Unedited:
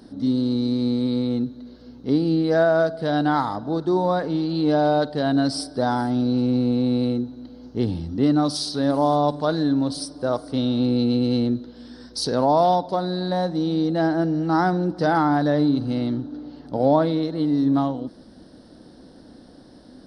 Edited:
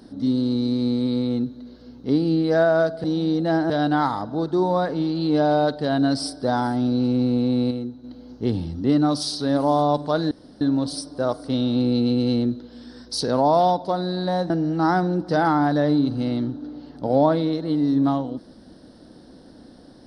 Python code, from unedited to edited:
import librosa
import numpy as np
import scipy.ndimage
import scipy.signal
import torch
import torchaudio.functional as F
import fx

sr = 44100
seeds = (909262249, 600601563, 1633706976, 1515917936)

y = fx.edit(x, sr, fx.clip_gain(start_s=7.05, length_s=0.33, db=-5.5),
    fx.insert_room_tone(at_s=9.65, length_s=0.3),
    fx.move(start_s=13.54, length_s=0.66, to_s=3.04), tone=tone)